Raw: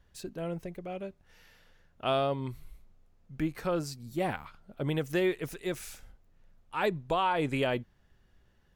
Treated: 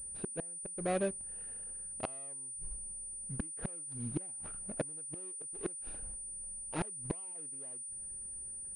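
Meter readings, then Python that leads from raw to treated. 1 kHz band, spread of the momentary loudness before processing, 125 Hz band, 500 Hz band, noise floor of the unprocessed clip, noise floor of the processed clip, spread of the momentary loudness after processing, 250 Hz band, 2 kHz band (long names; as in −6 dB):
−13.5 dB, 14 LU, −8.0 dB, −9.5 dB, −66 dBFS, −45 dBFS, 4 LU, −8.5 dB, −13.0 dB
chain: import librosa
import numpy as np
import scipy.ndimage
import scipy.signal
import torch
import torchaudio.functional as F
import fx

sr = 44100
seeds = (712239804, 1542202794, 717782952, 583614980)

y = scipy.ndimage.median_filter(x, 41, mode='constant')
y = fx.low_shelf(y, sr, hz=200.0, db=-6.5)
y = fx.gate_flip(y, sr, shuts_db=-32.0, range_db=-34)
y = fx.pwm(y, sr, carrier_hz=9300.0)
y = y * librosa.db_to_amplitude(9.0)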